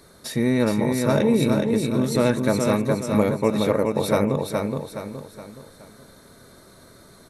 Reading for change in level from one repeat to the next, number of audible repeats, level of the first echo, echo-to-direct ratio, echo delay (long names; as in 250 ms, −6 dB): −7.5 dB, 4, −4.0 dB, −3.0 dB, 419 ms